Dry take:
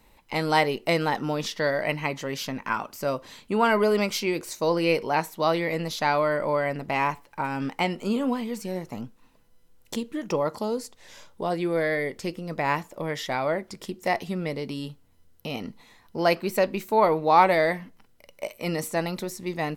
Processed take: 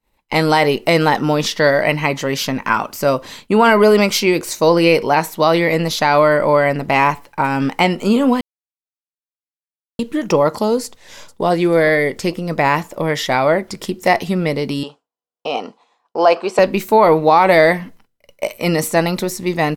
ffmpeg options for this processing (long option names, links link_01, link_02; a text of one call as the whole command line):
ffmpeg -i in.wav -filter_complex "[0:a]asplit=2[link_01][link_02];[link_02]afade=type=in:start_time=10.84:duration=0.01,afade=type=out:start_time=11.45:duration=0.01,aecho=0:1:440|880|1320:0.211349|0.0528372|0.0132093[link_03];[link_01][link_03]amix=inputs=2:normalize=0,asettb=1/sr,asplit=3[link_04][link_05][link_06];[link_04]atrim=end=14.834[link_07];[link_05]atrim=start=14.83:end=16.59,asetpts=PTS-STARTPTS,afade=type=in:duration=0.004:curve=qsin,afade=type=out:start_time=1.756:duration=0.004:curve=qsin,highpass=440,equalizer=frequency=470:width_type=q:width=4:gain=4,equalizer=frequency=750:width_type=q:width=4:gain=8,equalizer=frequency=1100:width_type=q:width=4:gain=6,equalizer=frequency=2000:width_type=q:width=4:gain=-10,equalizer=frequency=4100:width_type=q:width=4:gain=-6,equalizer=frequency=6100:width_type=q:width=4:gain=-4,lowpass=frequency=7200:width=0.5412,lowpass=frequency=7200:width=1.3066[link_08];[link_06]atrim=start=16.586[link_09];[link_07][link_08]acrossfade=duration=0.004:curve1=hsin:curve2=qsin[link_10];[link_10][link_09]acrossfade=duration=0.004:curve1=qsin:curve2=hsin,asplit=3[link_11][link_12][link_13];[link_11]atrim=end=8.41,asetpts=PTS-STARTPTS,afade=type=out:start_time=8.406:duration=0.004:curve=hsin[link_14];[link_12]atrim=start=8.41:end=9.99,asetpts=PTS-STARTPTS,volume=0[link_15];[link_13]atrim=start=9.99,asetpts=PTS-STARTPTS,afade=type=in:duration=0.004:curve=hsin[link_16];[link_14][link_15][link_16]concat=n=3:v=0:a=1,agate=range=-33dB:threshold=-44dB:ratio=3:detection=peak,alimiter=level_in=12.5dB:limit=-1dB:release=50:level=0:latency=1,volume=-1dB" out.wav